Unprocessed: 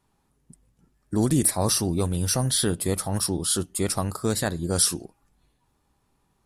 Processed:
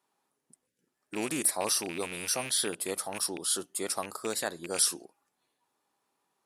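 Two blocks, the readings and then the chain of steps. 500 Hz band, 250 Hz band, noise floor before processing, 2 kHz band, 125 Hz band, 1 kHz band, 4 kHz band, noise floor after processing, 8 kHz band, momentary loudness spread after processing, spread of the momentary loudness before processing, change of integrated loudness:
−7.0 dB, −12.5 dB, −70 dBFS, −0.5 dB, −23.5 dB, −4.5 dB, −4.5 dB, −82 dBFS, −4.5 dB, 7 LU, 6 LU, −6.0 dB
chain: loose part that buzzes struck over −24 dBFS, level −22 dBFS
gain on a spectral selection 0:00.67–0:00.88, 600–1,400 Hz −16 dB
high-pass filter 400 Hz 12 dB per octave
level −4.5 dB

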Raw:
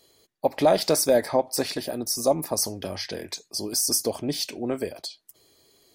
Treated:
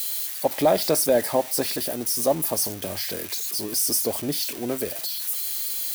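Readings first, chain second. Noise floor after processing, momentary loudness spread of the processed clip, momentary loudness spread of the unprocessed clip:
−35 dBFS, 7 LU, 12 LU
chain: spike at every zero crossing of −21.5 dBFS
steady tone 5,900 Hz −50 dBFS
parametric band 6,300 Hz −4.5 dB 1.2 octaves

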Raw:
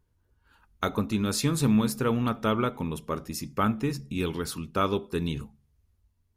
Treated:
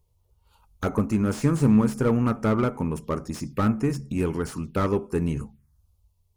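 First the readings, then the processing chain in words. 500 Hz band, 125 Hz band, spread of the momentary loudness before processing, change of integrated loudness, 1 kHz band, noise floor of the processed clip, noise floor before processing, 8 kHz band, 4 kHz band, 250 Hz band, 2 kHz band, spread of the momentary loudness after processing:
+3.5 dB, +5.0 dB, 10 LU, +3.5 dB, −0.5 dB, −68 dBFS, −71 dBFS, −5.0 dB, −8.5 dB, +4.0 dB, −0.5 dB, 11 LU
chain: high-shelf EQ 10,000 Hz +3 dB
notch filter 670 Hz, Q 17
in parallel at −10 dB: asymmetric clip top −33 dBFS
on the sum: phaser swept by the level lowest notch 260 Hz, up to 3,600 Hz, full sweep at −28 dBFS
slew-rate limiting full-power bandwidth 59 Hz
level +2.5 dB

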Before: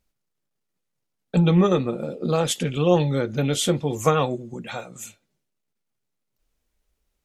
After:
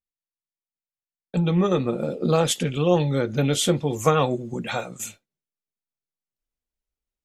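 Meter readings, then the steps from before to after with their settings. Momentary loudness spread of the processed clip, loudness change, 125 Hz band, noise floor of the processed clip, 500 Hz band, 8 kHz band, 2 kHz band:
9 LU, −1.0 dB, −1.0 dB, below −85 dBFS, 0.0 dB, +1.0 dB, +1.0 dB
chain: noise gate with hold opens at −30 dBFS
speech leveller within 5 dB 0.5 s

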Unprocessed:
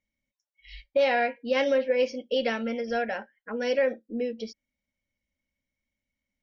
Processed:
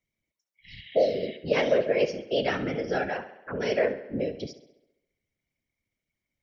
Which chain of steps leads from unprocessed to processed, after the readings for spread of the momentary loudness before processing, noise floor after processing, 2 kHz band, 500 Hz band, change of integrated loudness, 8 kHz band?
10 LU, below −85 dBFS, −2.0 dB, 0.0 dB, 0.0 dB, can't be measured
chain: healed spectral selection 0:00.78–0:01.34, 620–3,900 Hz before
random phases in short frames
on a send: tape delay 69 ms, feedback 64%, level −13 dB, low-pass 5,200 Hz

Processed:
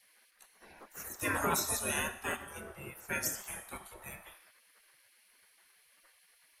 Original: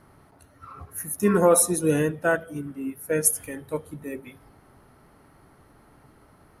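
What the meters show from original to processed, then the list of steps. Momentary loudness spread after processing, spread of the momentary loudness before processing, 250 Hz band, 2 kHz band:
17 LU, 19 LU, −18.0 dB, −5.5 dB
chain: four-comb reverb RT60 0.78 s, combs from 28 ms, DRR 12.5 dB
gate on every frequency bin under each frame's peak −20 dB weak
level +3 dB

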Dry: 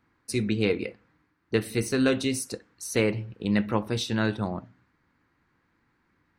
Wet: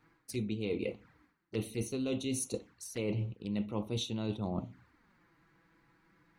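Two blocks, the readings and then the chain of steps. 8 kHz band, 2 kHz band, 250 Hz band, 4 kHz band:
−6.5 dB, −16.5 dB, −9.0 dB, −8.5 dB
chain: reversed playback
downward compressor 10 to 1, threshold −36 dBFS, peak gain reduction 18 dB
reversed playback
flanger swept by the level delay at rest 7 ms, full sweep at −39.5 dBFS
level +5 dB

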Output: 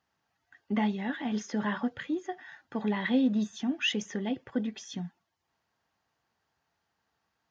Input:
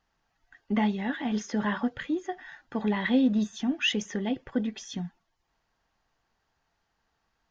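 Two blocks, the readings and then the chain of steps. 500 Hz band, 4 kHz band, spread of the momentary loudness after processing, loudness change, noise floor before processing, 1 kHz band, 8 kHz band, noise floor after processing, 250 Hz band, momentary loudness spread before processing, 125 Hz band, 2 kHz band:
−2.5 dB, −2.5 dB, 13 LU, −2.5 dB, −77 dBFS, −2.5 dB, can't be measured, −81 dBFS, −2.5 dB, 13 LU, −2.5 dB, −2.5 dB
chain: high-pass filter 74 Hz 24 dB per octave
level −2.5 dB

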